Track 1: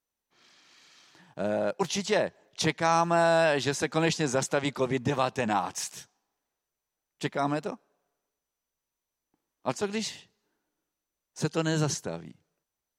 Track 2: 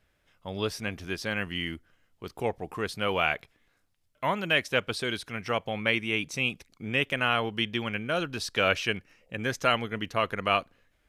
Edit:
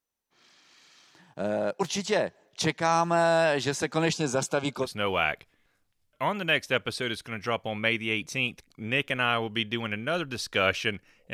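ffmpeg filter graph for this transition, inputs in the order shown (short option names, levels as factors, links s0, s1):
-filter_complex "[0:a]asettb=1/sr,asplit=3[s0][s1][s2];[s0]atrim=end=4.134[s3];[s1]atrim=start=4.13:end=4.89,asetpts=PTS-STARTPTS,afade=t=in:d=0.004:c=qsin,afade=t=out:st=0.756:d=0.004:c=qsin,asuperstop=centerf=1900:order=8:qfactor=4.6[s4];[s2]atrim=start=4.886[s5];[s3][s4]acrossfade=d=0.004:c1=hsin:c2=qsin[s6];[s6][s5]acrossfade=d=0.004:c1=qsin:c2=hsin,apad=whole_dur=11.33,atrim=end=11.33,atrim=end=4.89,asetpts=PTS-STARTPTS[s7];[1:a]atrim=start=2.83:end=9.35,asetpts=PTS-STARTPTS[s8];[s7][s8]acrossfade=d=0.08:c1=tri:c2=tri"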